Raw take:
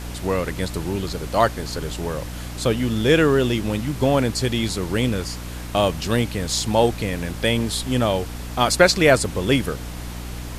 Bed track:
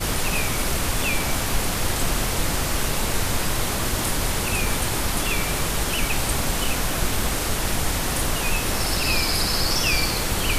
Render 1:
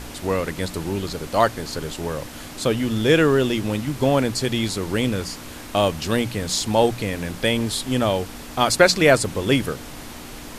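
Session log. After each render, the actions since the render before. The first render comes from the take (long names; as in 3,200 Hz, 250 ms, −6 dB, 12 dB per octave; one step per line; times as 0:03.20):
mains-hum notches 60/120/180 Hz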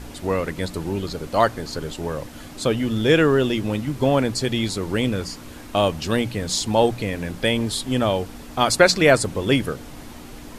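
broadband denoise 6 dB, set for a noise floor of −37 dBFS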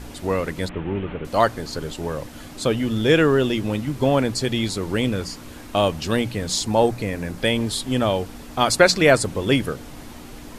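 0:00.69–0:01.25: linear delta modulator 16 kbit/s, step −35 dBFS
0:06.63–0:07.38: parametric band 3,200 Hz −6 dB 0.54 octaves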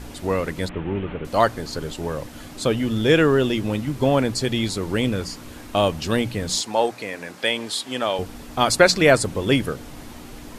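0:06.61–0:08.19: meter weighting curve A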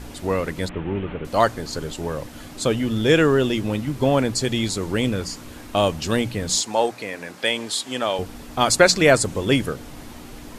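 dynamic equaliser 7,100 Hz, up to +5 dB, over −43 dBFS, Q 2.1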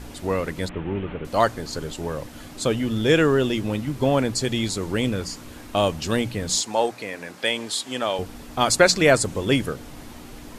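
level −1.5 dB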